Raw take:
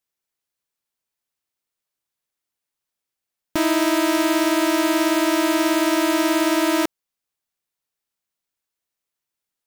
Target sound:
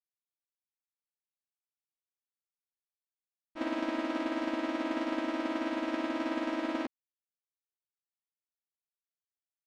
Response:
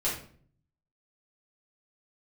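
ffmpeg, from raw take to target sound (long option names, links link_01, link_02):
-filter_complex "[0:a]asplit=3[link_01][link_02][link_03];[link_02]asetrate=33038,aresample=44100,atempo=1.33484,volume=-11dB[link_04];[link_03]asetrate=37084,aresample=44100,atempo=1.18921,volume=-6dB[link_05];[link_01][link_04][link_05]amix=inputs=3:normalize=0,lowpass=3100,agate=range=-33dB:threshold=-7dB:ratio=3:detection=peak"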